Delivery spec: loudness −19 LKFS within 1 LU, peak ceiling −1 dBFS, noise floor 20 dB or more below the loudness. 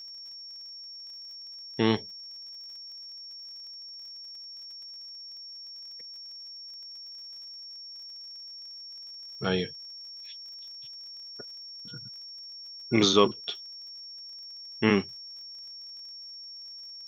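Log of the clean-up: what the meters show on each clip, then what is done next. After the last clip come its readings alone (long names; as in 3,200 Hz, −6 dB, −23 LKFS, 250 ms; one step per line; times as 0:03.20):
crackle rate 41 per second; interfering tone 5,500 Hz; level of the tone −41 dBFS; integrated loudness −34.0 LKFS; sample peak −7.0 dBFS; target loudness −19.0 LKFS
→ click removal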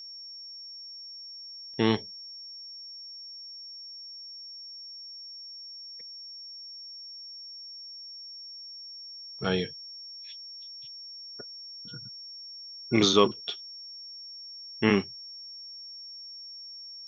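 crackle rate 0 per second; interfering tone 5,500 Hz; level of the tone −41 dBFS
→ notch filter 5,500 Hz, Q 30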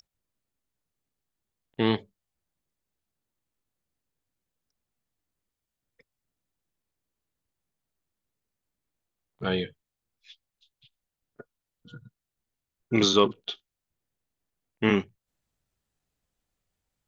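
interfering tone none found; integrated loudness −26.5 LKFS; sample peak −6.5 dBFS; target loudness −19.0 LKFS
→ level +7.5 dB
brickwall limiter −1 dBFS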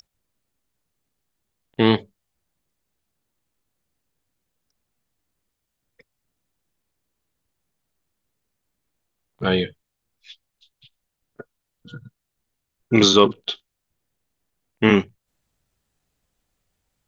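integrated loudness −19.5 LKFS; sample peak −1.0 dBFS; background noise floor −80 dBFS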